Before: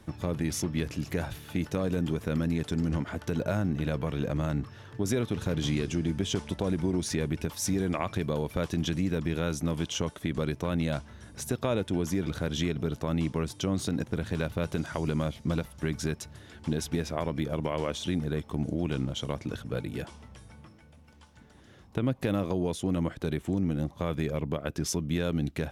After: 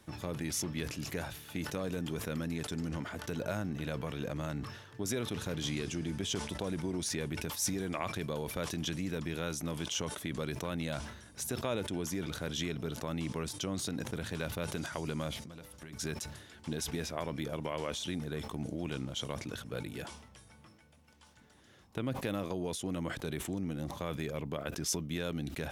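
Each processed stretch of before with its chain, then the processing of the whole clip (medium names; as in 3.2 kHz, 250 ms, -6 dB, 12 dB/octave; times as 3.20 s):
15.44–15.93 s: de-hum 99.1 Hz, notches 9 + compression, threshold -37 dBFS
whole clip: tilt EQ +1.5 dB/octave; decay stretcher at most 65 dB/s; trim -5 dB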